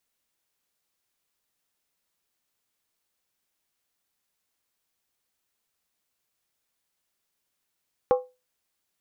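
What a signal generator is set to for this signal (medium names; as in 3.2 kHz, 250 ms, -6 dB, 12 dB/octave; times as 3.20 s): skin hit, lowest mode 504 Hz, decay 0.26 s, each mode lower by 7 dB, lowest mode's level -13.5 dB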